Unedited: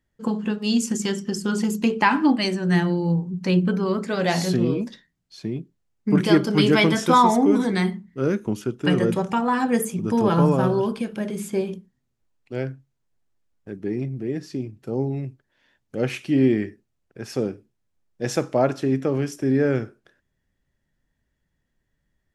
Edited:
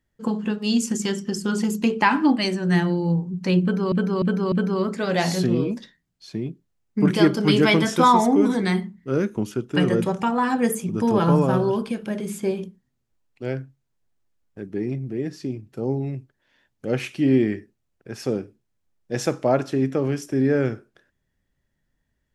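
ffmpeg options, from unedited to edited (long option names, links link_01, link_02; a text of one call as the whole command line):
ffmpeg -i in.wav -filter_complex "[0:a]asplit=4[link_01][link_02][link_03][link_04];[link_01]atrim=end=3.922[link_05];[link_02]atrim=start=3.618:end=3.922[link_06];[link_03]atrim=start=3.618:end=3.922[link_07];[link_04]atrim=start=3.618[link_08];[link_05][link_06]acrossfade=duration=0.004:curve1=hsin:curve2=hsin[link_09];[link_09][link_07]acrossfade=duration=0.004:curve1=hsin:curve2=hsin[link_10];[link_10][link_08]acrossfade=duration=0.004:curve1=hsin:curve2=hsin" out.wav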